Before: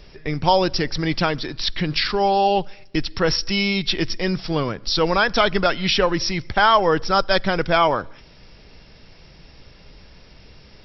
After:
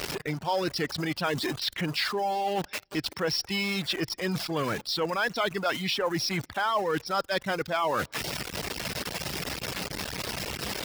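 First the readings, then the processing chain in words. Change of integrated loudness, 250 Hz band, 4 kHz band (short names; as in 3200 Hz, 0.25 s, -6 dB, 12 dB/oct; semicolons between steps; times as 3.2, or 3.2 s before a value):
-9.5 dB, -8.0 dB, -7.0 dB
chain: zero-crossing step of -22 dBFS; reverse; compressor 6:1, threshold -23 dBFS, peak gain reduction 12.5 dB; reverse; tilt +1.5 dB/oct; reverb removal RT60 0.65 s; HPF 78 Hz 12 dB/oct; high shelf 3100 Hz -8.5 dB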